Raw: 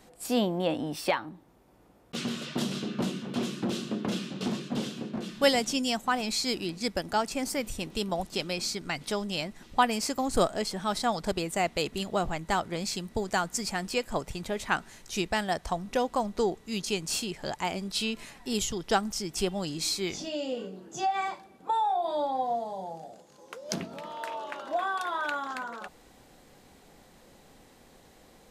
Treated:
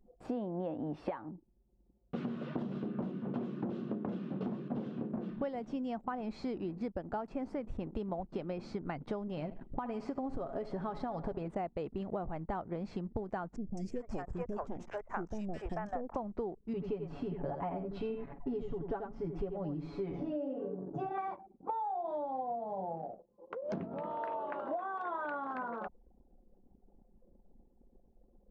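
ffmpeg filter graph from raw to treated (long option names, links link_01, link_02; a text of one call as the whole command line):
ffmpeg -i in.wav -filter_complex "[0:a]asettb=1/sr,asplit=3[link_01][link_02][link_03];[link_01]atrim=end=9.274[link_04];[link_02]atrim=start=9.27:end=11.48,asetpts=PTS-STARTPTS,afade=type=in:duration=0.004:curve=qsin,afade=type=out:start_time=2.206:duration=0.004:curve=qsin,aecho=1:1:7.3:0.43,atrim=end_sample=97461,acompressor=threshold=-28dB:ratio=4:attack=3.2:release=140:knee=1:detection=peak,aecho=1:1:73|146|219|292|365:0.168|0.094|0.0526|0.0295|0.0165,atrim=end_sample=97461[link_05];[link_03]atrim=start=11.476[link_06];[link_04][link_05]acrossfade=duration=0.004:curve1=hsin:curve2=qsin[link_07];[link_07][link_06]acrossfade=duration=0.004:curve1=qsin:curve2=hsin,asettb=1/sr,asplit=3[link_08][link_09][link_10];[link_08]atrim=end=13.564[link_11];[link_09]atrim=start=13.56:end=16.16,asetpts=PTS-STARTPTS,afade=type=in:duration=0.004:curve=qsin,afade=type=out:start_time=2.596:duration=0.004:curve=qsin,aeval=exprs='if(lt(val(0),0),0.447*val(0),val(0))':channel_layout=same,highshelf=frequency=5000:width_type=q:width=3:gain=6.5,acrossover=split=510|2400[link_12][link_13][link_14];[link_14]adelay=210[link_15];[link_13]adelay=440[link_16];[link_12][link_16][link_15]amix=inputs=3:normalize=0,atrim=end_sample=114660[link_17];[link_10]atrim=start=16.156[link_18];[link_11][link_17]acrossfade=duration=0.004:curve1=hsin:curve2=qsin[link_19];[link_19][link_18]acrossfade=duration=0.004:curve1=qsin:curve2=hsin,asettb=1/sr,asplit=3[link_20][link_21][link_22];[link_20]atrim=end=16.734[link_23];[link_21]atrim=start=16.73:end=21.18,asetpts=PTS-STARTPTS,afade=type=in:duration=0.004:curve=qsin,afade=type=out:start_time=4.446:duration=0.004:curve=qsin,lowpass=frequency=1300:poles=1,aecho=1:1:7.1:0.98,atrim=end_sample=196245,aecho=1:1:86:0.422,atrim=end_sample=196245[link_24];[link_22]atrim=start=21.176[link_25];[link_23][link_24]acrossfade=duration=0.004:curve1=hsin:curve2=qsin[link_26];[link_26][link_25]acrossfade=duration=0.004:curve1=qsin:curve2=hsin,anlmdn=0.0251,lowpass=1000,acompressor=threshold=-38dB:ratio=12,volume=4dB" out.wav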